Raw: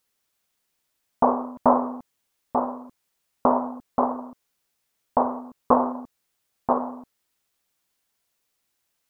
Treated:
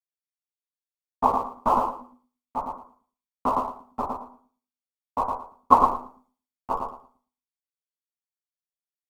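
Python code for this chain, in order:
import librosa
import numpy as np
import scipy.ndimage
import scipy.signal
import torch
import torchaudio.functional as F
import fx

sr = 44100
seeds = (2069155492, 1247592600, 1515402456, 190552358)

p1 = fx.vibrato(x, sr, rate_hz=13.0, depth_cents=12.0)
p2 = fx.hum_notches(p1, sr, base_hz=50, count=8)
p3 = p2 + 0.53 * np.pad(p2, (int(0.9 * sr / 1000.0), 0))[:len(p2)]
p4 = fx.schmitt(p3, sr, flips_db=-15.5)
p5 = p3 + (p4 * librosa.db_to_amplitude(-8.5))
p6 = fx.chorus_voices(p5, sr, voices=6, hz=0.97, base_ms=12, depth_ms=3.0, mix_pct=45)
p7 = p6 + fx.echo_feedback(p6, sr, ms=113, feedback_pct=28, wet_db=-4.0, dry=0)
p8 = fx.band_widen(p7, sr, depth_pct=100)
y = p8 * librosa.db_to_amplitude(-3.5)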